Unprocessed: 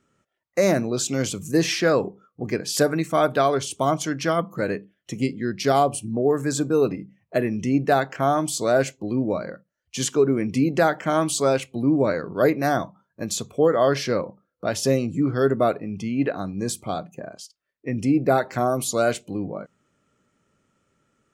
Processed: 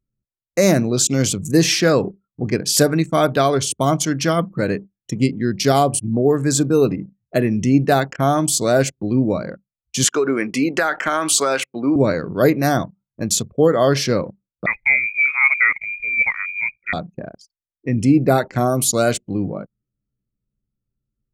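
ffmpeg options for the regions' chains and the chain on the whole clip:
-filter_complex "[0:a]asettb=1/sr,asplit=3[s0][s1][s2];[s0]atrim=end=10.044[s3];[s1]atrim=start=10.04:end=11.96,asetpts=PTS-STARTPTS,afade=t=in:d=0.004:c=qsin,afade=t=out:st=1.916:d=0.004:c=qsin,highpass=330,equalizer=f=1500:t=o:w=1.4:g=11.5,acompressor=threshold=0.141:ratio=6:attack=3.2:release=140:knee=1:detection=peak[s4];[s2]atrim=start=11.956[s5];[s3][s4]acrossfade=d=0.004:c1=hsin:c2=qsin[s6];[s6][s5]acrossfade=d=0.004:c1=qsin:c2=hsin,asettb=1/sr,asplit=3[s7][s8][s9];[s7]atrim=end=14.664[s10];[s8]atrim=start=14.66:end=16.93,asetpts=PTS-STARTPTS,afade=t=in:d=0.004:c=qsin,afade=t=out:st=2.266:d=0.004:c=qsin,highpass=150,lowpass=f=2200:t=q:w=0.5098,lowpass=f=2200:t=q:w=0.6013,lowpass=f=2200:t=q:w=0.9,lowpass=f=2200:t=q:w=2.563,afreqshift=-2600[s11];[s9]atrim=start=16.926[s12];[s10][s11]acrossfade=d=0.004:c1=hsin:c2=qsin[s13];[s13][s12]acrossfade=d=0.004:c1=qsin:c2=hsin,lowshelf=f=330:g=10,anlmdn=6.31,highshelf=f=2700:g=10.5"

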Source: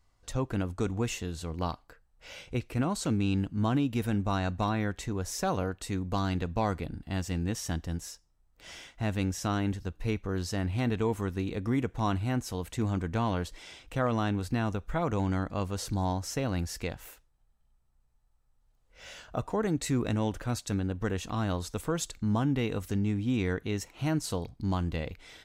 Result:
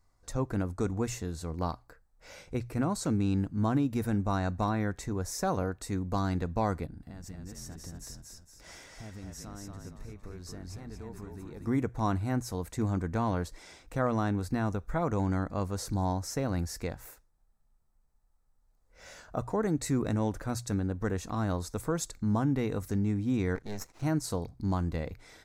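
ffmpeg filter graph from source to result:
-filter_complex "[0:a]asettb=1/sr,asplit=3[s0][s1][s2];[s0]atrim=end=6.864[s3];[s1]atrim=start=6.86:end=11.67,asetpts=PTS-STARTPTS,afade=t=in:d=0.004:c=qsin,afade=t=out:st=4.806:d=0.004:c=qsin,acompressor=threshold=0.01:ratio=8:attack=3.2:release=140:knee=1:detection=peak,asplit=6[s4][s5][s6][s7][s8][s9];[s5]adelay=230,afreqshift=-40,volume=0.668[s10];[s6]adelay=460,afreqshift=-80,volume=0.288[s11];[s7]adelay=690,afreqshift=-120,volume=0.123[s12];[s8]adelay=920,afreqshift=-160,volume=0.0531[s13];[s9]adelay=1150,afreqshift=-200,volume=0.0229[s14];[s4][s10][s11][s12][s13][s14]amix=inputs=6:normalize=0,atrim=end_sample=212121[s15];[s2]atrim=start=11.666[s16];[s3][s15]acrossfade=d=0.004:c1=hsin:c2=qsin[s17];[s17][s16]acrossfade=d=0.004:c1=qsin:c2=hsin,asettb=1/sr,asplit=3[s18][s19][s20];[s18]atrim=end=23.554[s21];[s19]atrim=start=23.55:end=24.03,asetpts=PTS-STARTPTS,afade=t=in:d=0.004:c=qsin,afade=t=out:st=0.476:d=0.004:c=qsin,lowpass=f=6900:t=q:w=1.6,aeval=exprs='max(val(0),0)':c=same[s22];[s20]atrim=start=24.026[s23];[s21][s22]acrossfade=d=0.004:c1=hsin:c2=qsin[s24];[s24][s23]acrossfade=d=0.004:c1=qsin:c2=hsin,equalizer=f=3000:t=o:w=0.58:g=-13,bandreject=f=60:t=h:w=6,bandreject=f=120:t=h:w=6"

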